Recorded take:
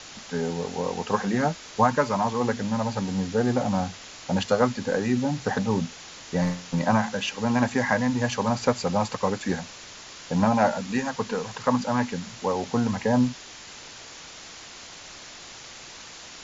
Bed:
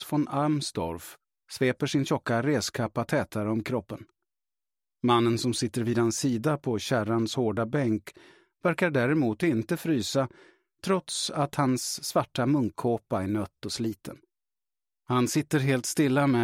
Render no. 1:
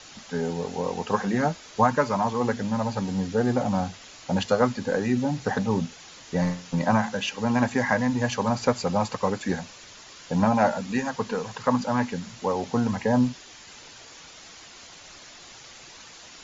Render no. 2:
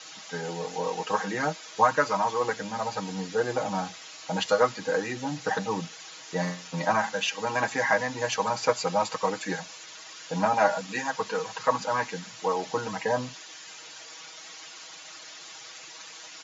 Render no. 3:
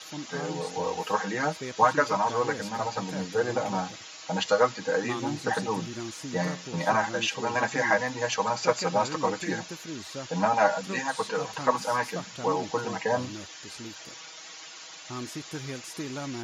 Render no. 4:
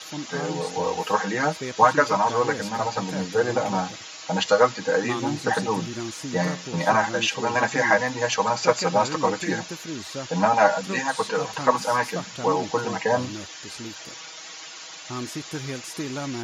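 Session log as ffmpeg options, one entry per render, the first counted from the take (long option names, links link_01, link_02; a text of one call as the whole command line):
ffmpeg -i in.wav -af "afftdn=noise_reduction=6:noise_floor=-44" out.wav
ffmpeg -i in.wav -af "highpass=frequency=620:poles=1,aecho=1:1:6.3:0.82" out.wav
ffmpeg -i in.wav -i bed.wav -filter_complex "[1:a]volume=-12.5dB[link_01];[0:a][link_01]amix=inputs=2:normalize=0" out.wav
ffmpeg -i in.wav -af "volume=4.5dB" out.wav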